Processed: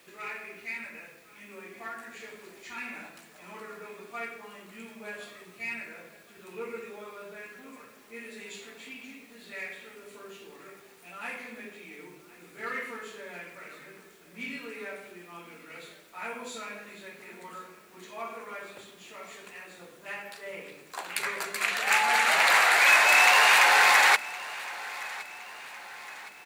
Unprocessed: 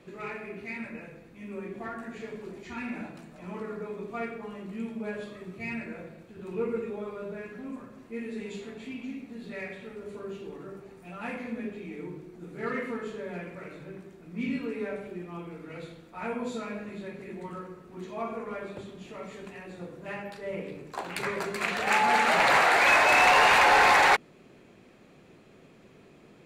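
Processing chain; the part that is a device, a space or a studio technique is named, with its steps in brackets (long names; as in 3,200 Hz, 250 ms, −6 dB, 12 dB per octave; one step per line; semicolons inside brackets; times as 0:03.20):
turntable without a phono preamp (RIAA equalisation recording; white noise bed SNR 30 dB)
parametric band 1,800 Hz +5.5 dB 2.3 octaves
repeating echo 1,065 ms, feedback 49%, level −19 dB
level −5.5 dB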